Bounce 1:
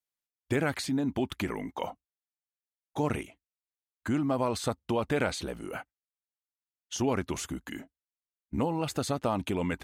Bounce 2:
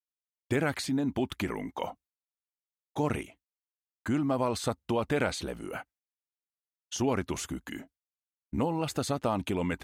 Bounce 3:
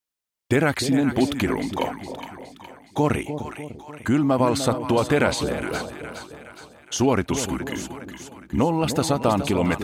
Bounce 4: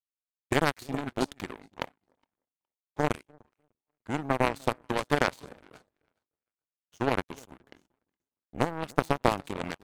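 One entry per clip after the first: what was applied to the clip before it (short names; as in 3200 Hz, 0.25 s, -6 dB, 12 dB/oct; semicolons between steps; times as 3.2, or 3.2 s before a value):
expander -55 dBFS
split-band echo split 780 Hz, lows 0.299 s, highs 0.415 s, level -9 dB; gain +8.5 dB
power-law curve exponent 3; mismatched tape noise reduction decoder only; gain +4.5 dB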